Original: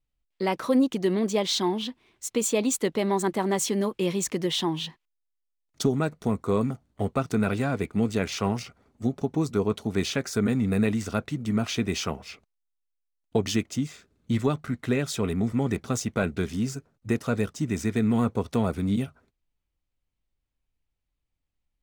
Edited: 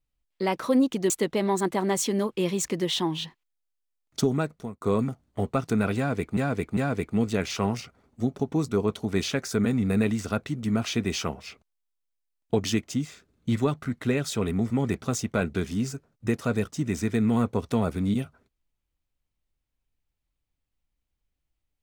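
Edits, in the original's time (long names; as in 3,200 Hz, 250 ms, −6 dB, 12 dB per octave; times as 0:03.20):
0:01.10–0:02.72: remove
0:06.00–0:06.43: fade out
0:07.59–0:07.99: repeat, 3 plays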